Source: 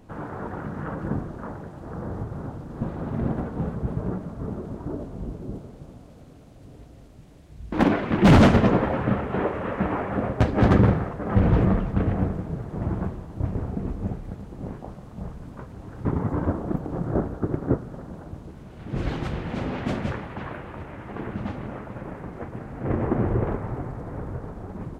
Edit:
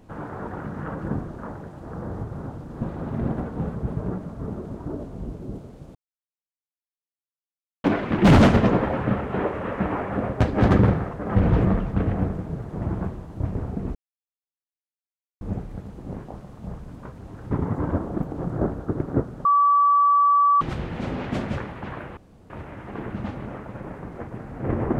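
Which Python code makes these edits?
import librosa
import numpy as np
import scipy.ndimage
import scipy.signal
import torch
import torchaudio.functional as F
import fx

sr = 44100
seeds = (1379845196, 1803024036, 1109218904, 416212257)

y = fx.edit(x, sr, fx.silence(start_s=5.95, length_s=1.89),
    fx.insert_silence(at_s=13.95, length_s=1.46),
    fx.bleep(start_s=17.99, length_s=1.16, hz=1150.0, db=-14.0),
    fx.insert_room_tone(at_s=20.71, length_s=0.33), tone=tone)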